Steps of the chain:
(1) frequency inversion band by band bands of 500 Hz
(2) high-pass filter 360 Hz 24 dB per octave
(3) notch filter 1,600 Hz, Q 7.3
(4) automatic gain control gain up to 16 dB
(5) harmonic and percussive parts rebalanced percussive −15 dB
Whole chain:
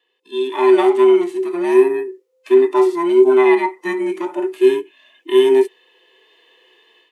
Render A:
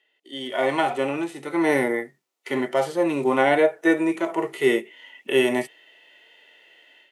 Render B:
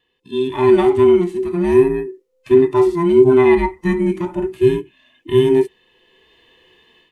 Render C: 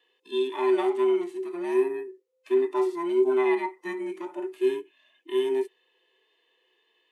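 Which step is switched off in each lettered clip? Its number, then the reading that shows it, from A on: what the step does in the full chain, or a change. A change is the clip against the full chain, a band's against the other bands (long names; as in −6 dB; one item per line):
1, 2 kHz band +7.0 dB
2, 250 Hz band +3.5 dB
4, change in integrated loudness −11.5 LU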